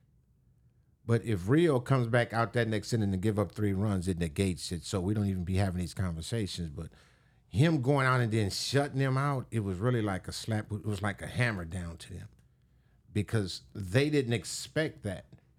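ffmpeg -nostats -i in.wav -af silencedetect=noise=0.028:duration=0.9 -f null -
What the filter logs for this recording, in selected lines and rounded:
silence_start: 0.00
silence_end: 1.09 | silence_duration: 1.09
silence_start: 11.87
silence_end: 13.16 | silence_duration: 1.29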